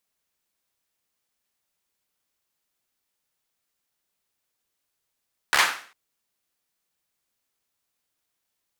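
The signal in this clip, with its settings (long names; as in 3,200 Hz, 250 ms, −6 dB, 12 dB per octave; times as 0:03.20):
synth clap length 0.40 s, bursts 5, apart 14 ms, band 1,500 Hz, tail 0.44 s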